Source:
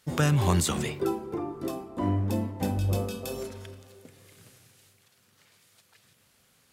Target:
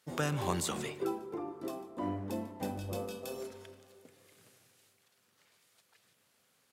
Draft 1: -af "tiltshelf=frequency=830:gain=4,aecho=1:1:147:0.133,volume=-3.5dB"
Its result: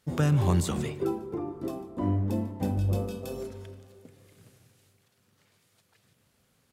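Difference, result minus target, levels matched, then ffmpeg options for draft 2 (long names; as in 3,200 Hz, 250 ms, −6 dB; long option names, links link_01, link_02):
500 Hz band −3.5 dB
-af "highpass=frequency=600:poles=1,tiltshelf=frequency=830:gain=4,aecho=1:1:147:0.133,volume=-3.5dB"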